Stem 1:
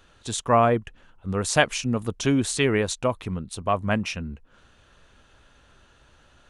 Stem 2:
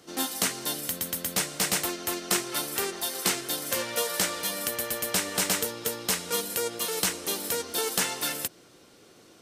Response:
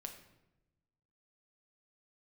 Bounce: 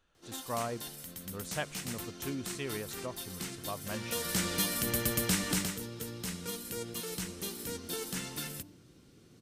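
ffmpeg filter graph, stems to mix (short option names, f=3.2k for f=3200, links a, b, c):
-filter_complex "[0:a]volume=-17dB[a];[1:a]bandreject=f=98.22:t=h:w=4,bandreject=f=196.44:t=h:w=4,bandreject=f=294.66:t=h:w=4,bandreject=f=392.88:t=h:w=4,bandreject=f=491.1:t=h:w=4,bandreject=f=589.32:t=h:w=4,bandreject=f=687.54:t=h:w=4,bandreject=f=785.76:t=h:w=4,bandreject=f=883.98:t=h:w=4,bandreject=f=982.2:t=h:w=4,bandreject=f=1.08042k:t=h:w=4,bandreject=f=1.17864k:t=h:w=4,asubboost=boost=6.5:cutoff=240,alimiter=limit=-17dB:level=0:latency=1:release=62,adelay=150,volume=-1dB,afade=t=in:st=3.9:d=0.69:silence=0.266073,afade=t=out:st=5.48:d=0.23:silence=0.354813,asplit=2[b][c];[c]volume=-13.5dB[d];[2:a]atrim=start_sample=2205[e];[d][e]afir=irnorm=-1:irlink=0[f];[a][b][f]amix=inputs=3:normalize=0"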